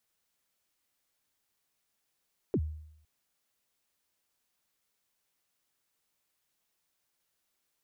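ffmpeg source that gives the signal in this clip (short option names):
-f lavfi -i "aevalsrc='0.0708*pow(10,-3*t/0.74)*sin(2*PI*(470*0.059/log(77/470)*(exp(log(77/470)*min(t,0.059)/0.059)-1)+77*max(t-0.059,0)))':d=0.51:s=44100"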